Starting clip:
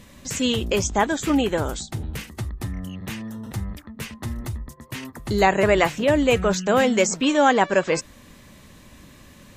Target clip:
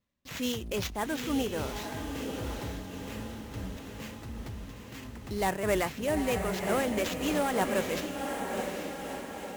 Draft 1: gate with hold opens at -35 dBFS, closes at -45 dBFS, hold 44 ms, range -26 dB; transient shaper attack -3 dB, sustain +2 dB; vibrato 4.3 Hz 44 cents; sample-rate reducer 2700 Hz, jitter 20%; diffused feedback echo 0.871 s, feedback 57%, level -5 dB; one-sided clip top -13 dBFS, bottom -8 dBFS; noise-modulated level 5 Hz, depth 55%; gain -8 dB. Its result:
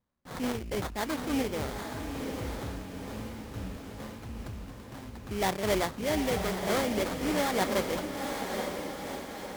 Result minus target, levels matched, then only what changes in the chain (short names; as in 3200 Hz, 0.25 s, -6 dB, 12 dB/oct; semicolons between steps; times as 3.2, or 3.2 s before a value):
sample-rate reducer: distortion +7 dB
change: sample-rate reducer 9700 Hz, jitter 20%